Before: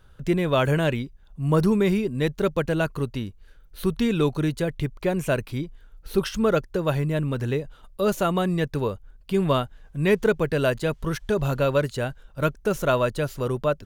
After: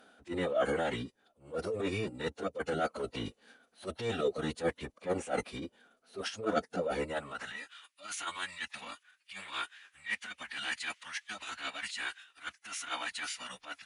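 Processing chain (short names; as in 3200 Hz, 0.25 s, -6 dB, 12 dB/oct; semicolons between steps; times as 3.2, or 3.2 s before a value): reverse; compressor 8:1, threshold -29 dBFS, peak gain reduction 14 dB; reverse; high-pass sweep 460 Hz -> 2100 Hz, 6.97–7.71; transient shaper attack -12 dB, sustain +1 dB; vocal rider within 5 dB 2 s; formant-preserving pitch shift -12 st; gain +3 dB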